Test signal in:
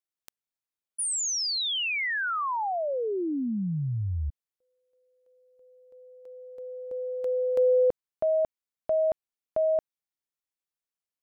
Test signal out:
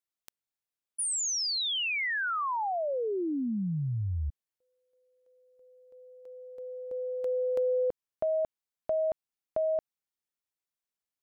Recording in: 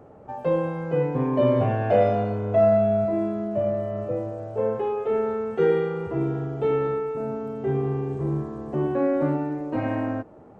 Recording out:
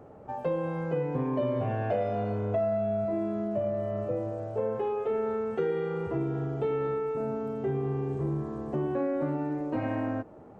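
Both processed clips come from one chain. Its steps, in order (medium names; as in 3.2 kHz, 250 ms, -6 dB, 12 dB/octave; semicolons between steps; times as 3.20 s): compression 4:1, threshold -25 dBFS; trim -1.5 dB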